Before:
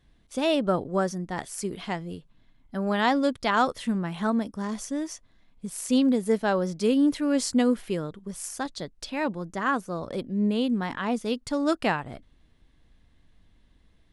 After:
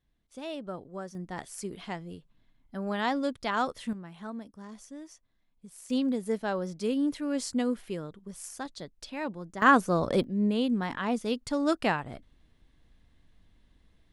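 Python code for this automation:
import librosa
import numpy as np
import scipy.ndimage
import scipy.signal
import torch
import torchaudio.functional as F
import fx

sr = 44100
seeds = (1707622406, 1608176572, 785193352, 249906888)

y = fx.gain(x, sr, db=fx.steps((0.0, -14.0), (1.15, -6.0), (3.93, -14.0), (5.9, -6.5), (9.62, 6.0), (10.24, -2.0)))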